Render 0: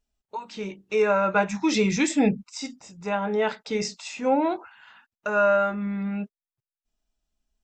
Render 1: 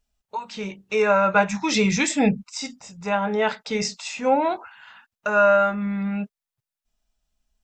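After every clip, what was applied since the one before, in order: bell 330 Hz -8.5 dB 0.71 oct; gain +4.5 dB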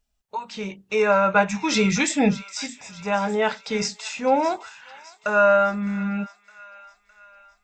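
thin delay 0.611 s, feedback 52%, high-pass 1500 Hz, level -15 dB

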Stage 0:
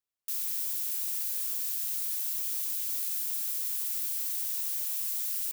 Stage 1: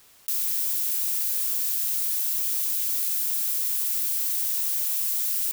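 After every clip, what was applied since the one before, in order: in parallel at -12 dB: soft clip -34.5 dBFS, distortion -9 dB; on the sum: fast leveller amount 50%; gain +5 dB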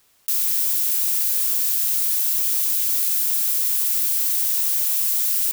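upward expander 1.5:1, over -46 dBFS; gain +5.5 dB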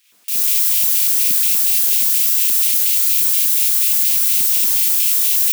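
Schroeder reverb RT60 1 s, combs from 31 ms, DRR -5.5 dB; LFO high-pass square 4.2 Hz 230–2500 Hz; gain -1 dB

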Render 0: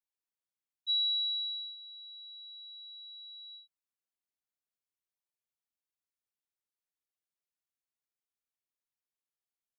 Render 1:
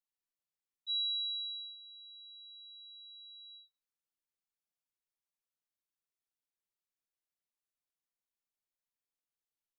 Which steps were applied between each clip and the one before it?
shoebox room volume 130 m³, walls furnished, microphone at 0.72 m; gain -5 dB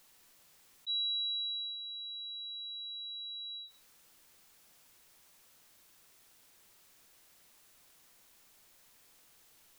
fast leveller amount 50%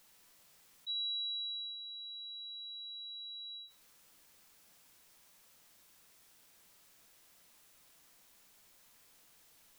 non-linear reverb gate 0.16 s falling, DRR 8 dB; gain -1.5 dB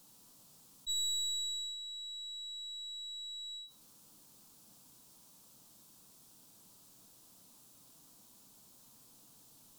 tracing distortion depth 0.035 ms; ten-band EQ 125 Hz +10 dB, 250 Hz +11 dB, 1000 Hz +5 dB, 2000 Hz -12 dB, 4000 Hz +3 dB, 8000 Hz +4 dB, 16000 Hz +4 dB

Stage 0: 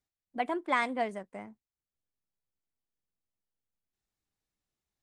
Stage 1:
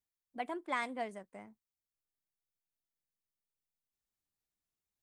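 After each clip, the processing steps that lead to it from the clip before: high shelf 7400 Hz +8.5 dB; gain -7.5 dB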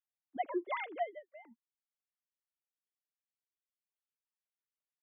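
sine-wave speech; gain +1 dB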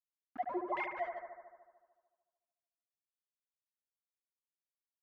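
sample gate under -43 dBFS; LFO low-pass saw down 1.3 Hz 830–2500 Hz; analogue delay 74 ms, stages 1024, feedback 71%, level -5.5 dB; gain -4.5 dB

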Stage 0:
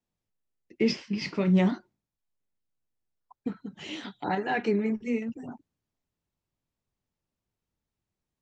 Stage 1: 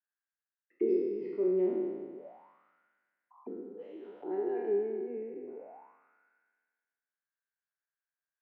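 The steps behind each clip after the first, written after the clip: spectral trails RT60 1.92 s; tone controls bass -10 dB, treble -13 dB; auto-wah 370–1600 Hz, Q 10, down, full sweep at -33 dBFS; gain +5.5 dB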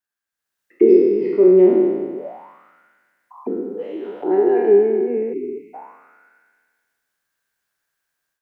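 spectral delete 5.33–5.74, 440–2000 Hz; AGC gain up to 12 dB; gain +5.5 dB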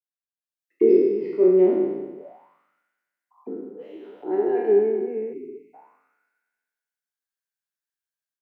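reverb RT60 0.35 s, pre-delay 7 ms, DRR 12 dB; three-band expander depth 40%; gain -6.5 dB

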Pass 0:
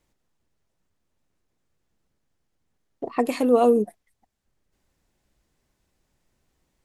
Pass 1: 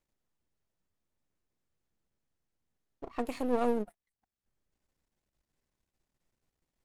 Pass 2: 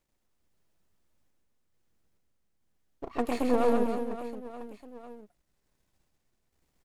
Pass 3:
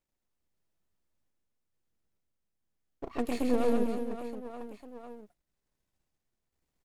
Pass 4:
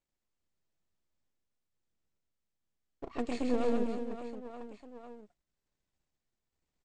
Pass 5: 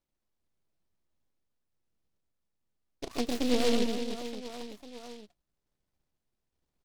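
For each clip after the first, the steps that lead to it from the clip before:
half-wave gain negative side -12 dB; gain -9 dB
random-step tremolo 2.3 Hz; on a send: reverse bouncing-ball echo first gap 0.13 s, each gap 1.4×, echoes 5; on the sum: gain +7.5 dB
gate -58 dBFS, range -8 dB; dynamic EQ 1000 Hz, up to -8 dB, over -42 dBFS, Q 0.82
elliptic low-pass 8100 Hz, stop band 50 dB; gain -2 dB
tone controls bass 0 dB, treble -10 dB; noise-modulated delay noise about 3400 Hz, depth 0.12 ms; gain +3.5 dB

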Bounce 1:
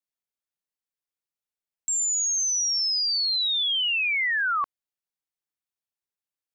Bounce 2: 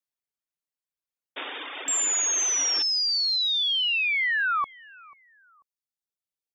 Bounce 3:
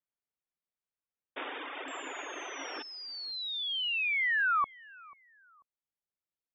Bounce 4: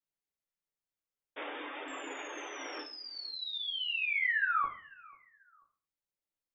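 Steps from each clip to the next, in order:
painted sound noise, 1.36–2.83, 260–3700 Hz -34 dBFS; reverb removal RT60 1.5 s; feedback echo 0.49 s, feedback 30%, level -24 dB
air absorption 440 m
shoebox room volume 39 m³, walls mixed, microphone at 0.56 m; gain -5 dB

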